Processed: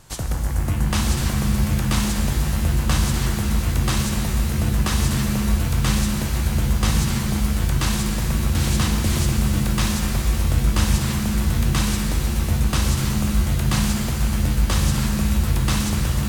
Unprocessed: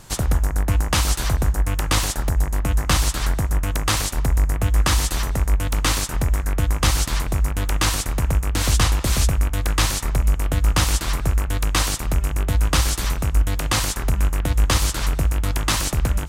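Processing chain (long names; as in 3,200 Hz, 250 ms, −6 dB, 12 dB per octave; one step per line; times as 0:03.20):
reverb with rising layers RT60 3.1 s, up +7 semitones, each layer −2 dB, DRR 3 dB
level −5.5 dB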